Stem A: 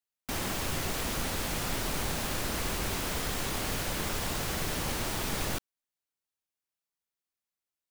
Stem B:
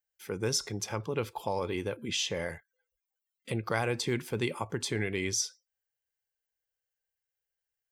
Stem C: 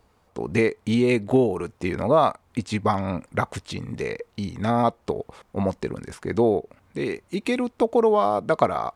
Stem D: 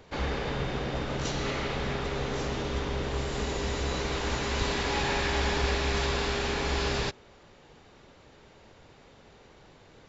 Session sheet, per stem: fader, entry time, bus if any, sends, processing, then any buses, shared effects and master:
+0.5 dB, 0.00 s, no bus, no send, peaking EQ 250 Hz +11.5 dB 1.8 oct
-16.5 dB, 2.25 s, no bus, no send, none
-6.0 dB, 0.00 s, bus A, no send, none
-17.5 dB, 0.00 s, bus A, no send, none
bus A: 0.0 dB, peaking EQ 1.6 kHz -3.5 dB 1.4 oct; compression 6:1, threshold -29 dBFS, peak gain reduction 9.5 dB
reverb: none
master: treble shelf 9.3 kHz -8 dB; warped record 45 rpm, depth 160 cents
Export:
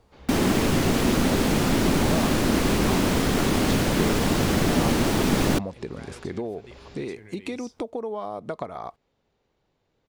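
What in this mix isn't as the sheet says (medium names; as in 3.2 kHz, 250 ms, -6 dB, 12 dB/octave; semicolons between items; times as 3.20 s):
stem A +0.5 dB -> +7.0 dB; stem C -6.0 dB -> +1.0 dB; master: missing warped record 45 rpm, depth 160 cents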